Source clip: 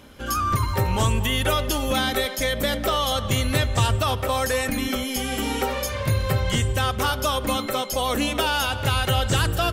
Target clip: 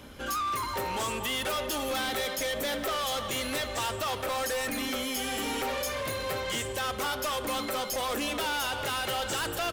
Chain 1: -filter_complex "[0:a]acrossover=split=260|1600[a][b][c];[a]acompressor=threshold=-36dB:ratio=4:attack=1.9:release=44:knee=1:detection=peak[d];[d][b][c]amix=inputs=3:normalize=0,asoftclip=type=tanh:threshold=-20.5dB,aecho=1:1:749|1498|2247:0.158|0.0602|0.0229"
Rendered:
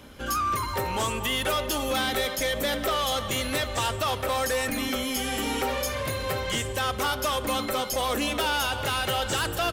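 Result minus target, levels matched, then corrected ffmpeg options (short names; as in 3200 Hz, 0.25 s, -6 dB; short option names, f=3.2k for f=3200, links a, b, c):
compressor: peak gain reduction -7 dB; soft clip: distortion -6 dB
-filter_complex "[0:a]acrossover=split=260|1600[a][b][c];[a]acompressor=threshold=-45dB:ratio=4:attack=1.9:release=44:knee=1:detection=peak[d];[d][b][c]amix=inputs=3:normalize=0,asoftclip=type=tanh:threshold=-28dB,aecho=1:1:749|1498|2247:0.158|0.0602|0.0229"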